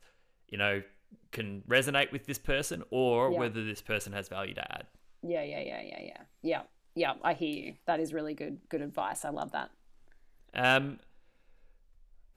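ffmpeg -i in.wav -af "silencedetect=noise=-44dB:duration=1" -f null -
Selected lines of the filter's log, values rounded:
silence_start: 10.97
silence_end: 12.36 | silence_duration: 1.39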